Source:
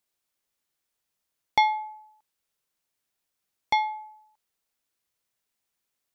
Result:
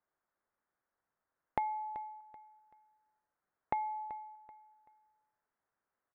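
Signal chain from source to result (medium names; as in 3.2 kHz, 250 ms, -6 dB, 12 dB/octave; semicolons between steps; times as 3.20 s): steep low-pass 1.7 kHz 36 dB/octave; bass shelf 390 Hz -7.5 dB; de-hum 59.29 Hz, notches 9; compression 10:1, threshold -37 dBFS, peak gain reduction 18 dB; feedback delay 383 ms, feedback 31%, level -16 dB; trim +4.5 dB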